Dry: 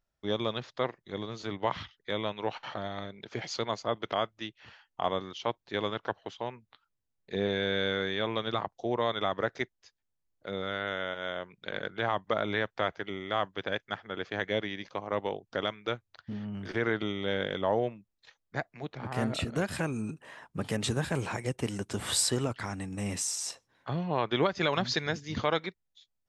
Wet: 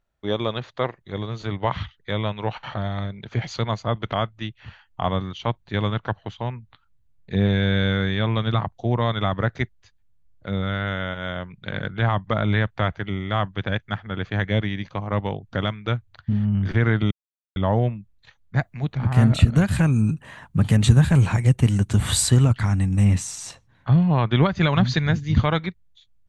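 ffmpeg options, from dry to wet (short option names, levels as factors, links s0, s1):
-filter_complex "[0:a]asettb=1/sr,asplit=3[s0][s1][s2];[s0]atrim=end=18.584[s3];[s1]atrim=start=18.58:end=23.05,asetpts=PTS-STARTPTS,afade=t=in:d=0.004:c=qsin,afade=t=out:st=4.466:d=0.004:c=qsin,highshelf=f=6100:g=10[s4];[s2]atrim=start=23.046[s5];[s3][s4]acrossfade=d=0.004:c1=hsin:c2=qsin[s6];[s6][s5]acrossfade=d=0.004:c1=qsin:c2=hsin,asplit=3[s7][s8][s9];[s7]atrim=end=17.11,asetpts=PTS-STARTPTS,afade=t=out:st=17.106:d=0.004:c=hsin[s10];[s8]atrim=start=17.11:end=17.56,asetpts=PTS-STARTPTS,volume=0[s11];[s9]atrim=start=17.56,asetpts=PTS-STARTPTS,afade=t=in:d=0.004:c=hsin[s12];[s10][s11][s12]concat=n=3:v=0:a=1,highshelf=f=5700:g=-10.5,bandreject=f=5200:w=6.8,asubboost=boost=8:cutoff=140,volume=2.24"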